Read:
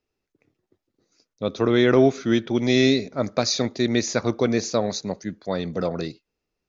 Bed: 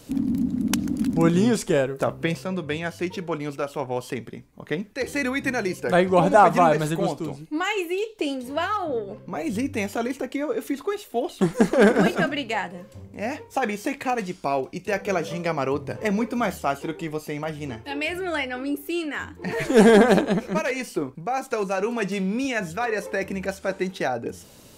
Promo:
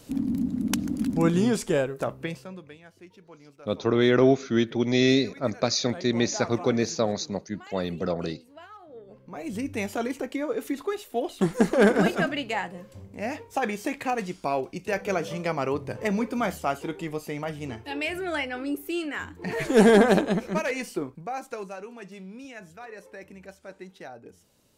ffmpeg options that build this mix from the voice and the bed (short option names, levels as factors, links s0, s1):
-filter_complex "[0:a]adelay=2250,volume=0.75[s0];[1:a]volume=6.31,afade=t=out:st=1.82:d=0.94:silence=0.11885,afade=t=in:st=8.9:d=1:silence=0.112202,afade=t=out:st=20.83:d=1.05:silence=0.199526[s1];[s0][s1]amix=inputs=2:normalize=0"